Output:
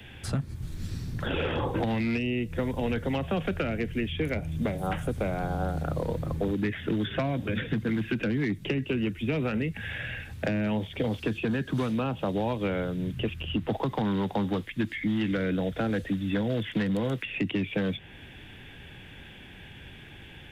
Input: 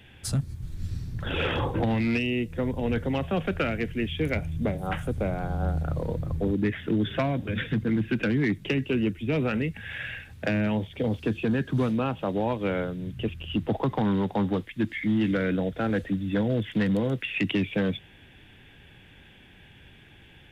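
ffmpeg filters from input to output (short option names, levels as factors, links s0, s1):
-filter_complex "[0:a]acrossover=split=170|820|3100[s0][s1][s2][s3];[s0]acompressor=threshold=0.01:ratio=4[s4];[s1]acompressor=threshold=0.0178:ratio=4[s5];[s2]acompressor=threshold=0.00708:ratio=4[s6];[s3]acompressor=threshold=0.00251:ratio=4[s7];[s4][s5][s6][s7]amix=inputs=4:normalize=0,volume=1.88"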